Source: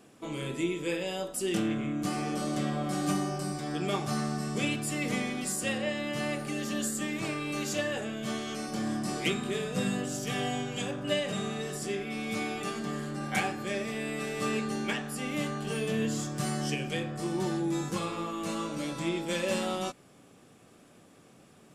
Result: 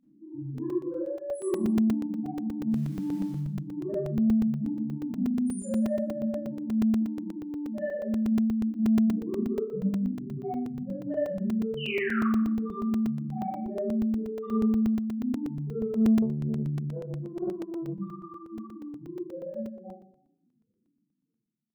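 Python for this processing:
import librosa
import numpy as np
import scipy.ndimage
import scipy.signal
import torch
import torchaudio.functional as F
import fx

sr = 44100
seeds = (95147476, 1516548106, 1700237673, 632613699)

y = fx.fade_out_tail(x, sr, length_s=5.75)
y = fx.peak_eq(y, sr, hz=2600.0, db=-2.5, octaves=2.9)
y = fx.spec_topn(y, sr, count=1)
y = 10.0 ** (-30.5 / 20.0) * np.tanh(y / 10.0 ** (-30.5 / 20.0))
y = fx.dmg_crackle(y, sr, seeds[0], per_s=570.0, level_db=-56.0, at=(2.7, 3.34), fade=0.02)
y = fx.spec_paint(y, sr, seeds[1], shape='fall', start_s=11.77, length_s=0.47, low_hz=1100.0, high_hz=3100.0, level_db=-44.0)
y = fx.rev_schroeder(y, sr, rt60_s=0.67, comb_ms=28, drr_db=-9.5)
y = fx.buffer_crackle(y, sr, first_s=0.58, period_s=0.12, block=128, kind='zero')
y = fx.doppler_dist(y, sr, depth_ms=0.53, at=(16.22, 17.97))
y = y * librosa.db_to_amplitude(1.0)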